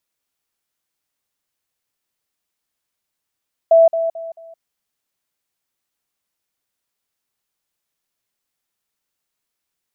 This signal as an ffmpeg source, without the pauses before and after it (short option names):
-f lavfi -i "aevalsrc='pow(10,(-6.5-10*floor(t/0.22))/20)*sin(2*PI*660*t)*clip(min(mod(t,0.22),0.17-mod(t,0.22))/0.005,0,1)':d=0.88:s=44100"